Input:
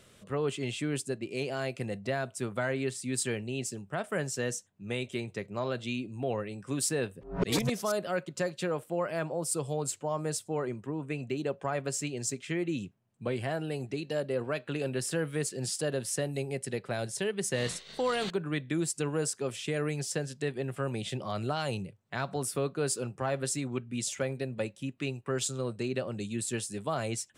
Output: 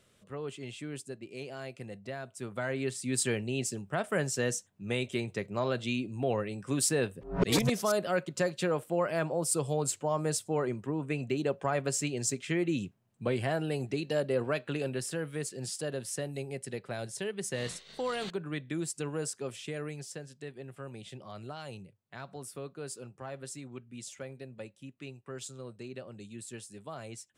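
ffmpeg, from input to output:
-af "volume=2dB,afade=t=in:st=2.29:d=0.96:silence=0.316228,afade=t=out:st=14.47:d=0.67:silence=0.501187,afade=t=out:st=19.43:d=0.79:silence=0.473151"

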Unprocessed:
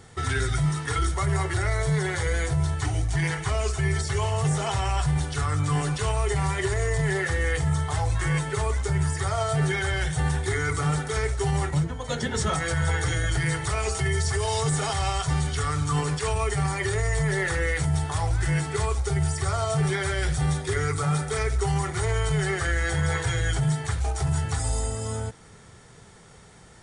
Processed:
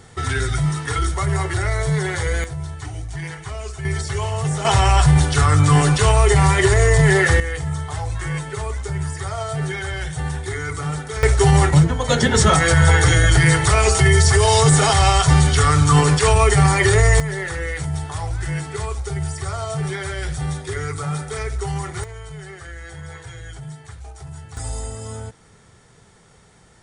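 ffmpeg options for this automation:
-af "asetnsamples=n=441:p=0,asendcmd='2.44 volume volume -4.5dB;3.85 volume volume 2dB;4.65 volume volume 11dB;7.4 volume volume -0.5dB;11.23 volume volume 11.5dB;17.2 volume volume -0.5dB;22.04 volume volume -11dB;24.57 volume volume -1.5dB',volume=4dB"

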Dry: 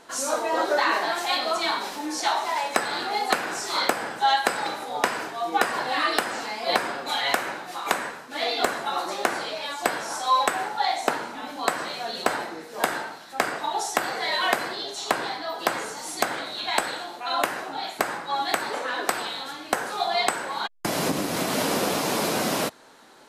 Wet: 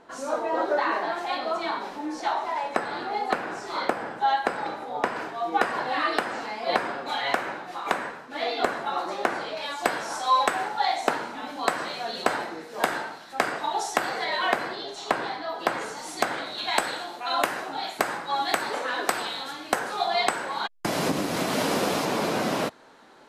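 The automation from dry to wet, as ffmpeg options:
-af "asetnsamples=n=441:p=0,asendcmd='5.16 lowpass f 2200;9.57 lowpass f 5800;14.24 lowpass f 2600;15.81 lowpass f 4800;16.58 lowpass f 12000;19.79 lowpass f 5900;22.05 lowpass f 2900',lowpass=f=1.2k:p=1"

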